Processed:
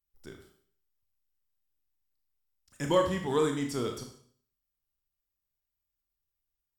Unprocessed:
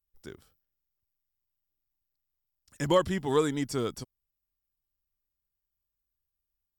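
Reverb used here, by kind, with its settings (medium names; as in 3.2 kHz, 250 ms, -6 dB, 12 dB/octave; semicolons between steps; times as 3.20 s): Schroeder reverb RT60 0.54 s, combs from 25 ms, DRR 3 dB; trim -3 dB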